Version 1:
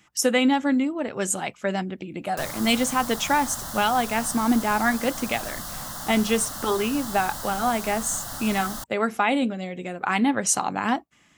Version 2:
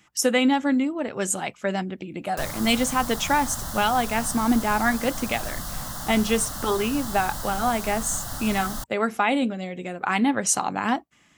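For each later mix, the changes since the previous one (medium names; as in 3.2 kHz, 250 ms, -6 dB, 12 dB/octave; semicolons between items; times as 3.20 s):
background: add bass shelf 140 Hz +8.5 dB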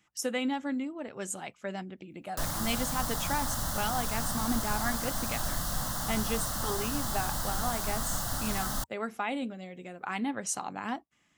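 speech -11.0 dB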